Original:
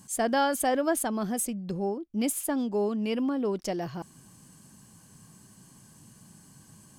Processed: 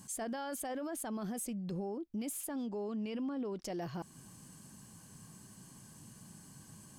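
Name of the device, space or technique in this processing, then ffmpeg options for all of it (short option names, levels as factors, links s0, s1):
stacked limiters: -filter_complex "[0:a]alimiter=limit=0.112:level=0:latency=1:release=475,alimiter=level_in=1.26:limit=0.0631:level=0:latency=1:release=16,volume=0.794,alimiter=level_in=2.24:limit=0.0631:level=0:latency=1:release=195,volume=0.447,asettb=1/sr,asplit=3[s0][s1][s2];[s0]atrim=end=2.664[s3];[s1]atrim=start=2.66:end=3.64,asetpts=PTS-STARTPTS,afade=t=in:d=0.004:c=qsin,afade=t=out:st=0.976:d=0.004:c=qsin,lowpass=7900[s4];[s2]atrim=start=3.636[s5];[s3][s4]acrossfade=d=0.004:c1=hsin:c2=qsin[s6];[s6][s5]acrossfade=d=0.004:c1=qsin:c2=hsin,volume=0.891"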